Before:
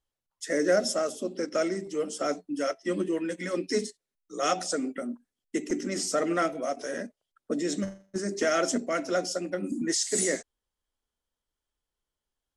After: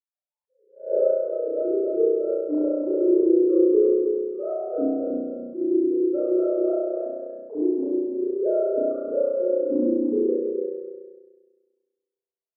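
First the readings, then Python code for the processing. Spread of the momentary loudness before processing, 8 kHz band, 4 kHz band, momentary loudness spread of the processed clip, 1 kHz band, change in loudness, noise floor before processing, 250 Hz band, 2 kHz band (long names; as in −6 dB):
10 LU, below −40 dB, below −40 dB, 11 LU, −10.5 dB, +6.0 dB, below −85 dBFS, +8.0 dB, below −25 dB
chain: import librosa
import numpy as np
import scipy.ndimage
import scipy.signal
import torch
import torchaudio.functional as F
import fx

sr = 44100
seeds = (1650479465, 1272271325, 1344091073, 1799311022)

y = fx.sine_speech(x, sr)
y = scipy.ndimage.gaussian_filter1d(y, 13.0, mode='constant')
y = fx.echo_feedback(y, sr, ms=292, feedback_pct=20, wet_db=-4.0)
y = fx.rev_spring(y, sr, rt60_s=1.4, pass_ms=(33,), chirp_ms=45, drr_db=-8.0)
y = fx.attack_slew(y, sr, db_per_s=160.0)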